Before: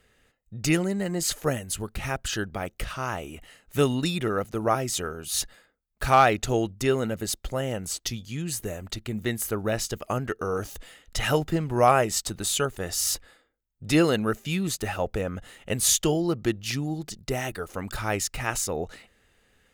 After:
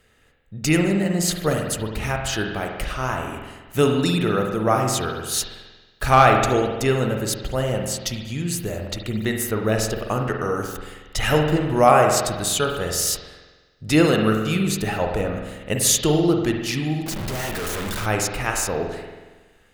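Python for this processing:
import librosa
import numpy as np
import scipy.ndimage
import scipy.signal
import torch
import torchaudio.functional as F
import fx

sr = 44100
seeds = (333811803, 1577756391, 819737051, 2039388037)

y = fx.clip_1bit(x, sr, at=(17.06, 18.06))
y = fx.rev_spring(y, sr, rt60_s=1.3, pass_ms=(46,), chirp_ms=30, drr_db=2.5)
y = y * librosa.db_to_amplitude(3.5)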